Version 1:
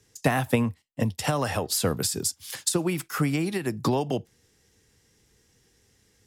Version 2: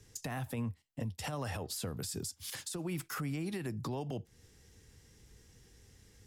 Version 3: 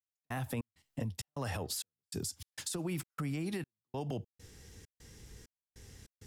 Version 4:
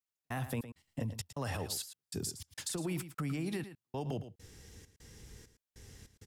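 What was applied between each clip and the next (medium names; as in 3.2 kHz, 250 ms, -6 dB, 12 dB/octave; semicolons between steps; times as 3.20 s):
bass shelf 110 Hz +11.5 dB; compression 4:1, threshold -34 dBFS, peak gain reduction 16.5 dB; peak limiter -29.5 dBFS, peak gain reduction 9.5 dB
compression 2:1, threshold -44 dBFS, peak gain reduction 6.5 dB; trance gate "..xx.xxx.xxx" 99 bpm -60 dB; trim +6.5 dB
delay 111 ms -12 dB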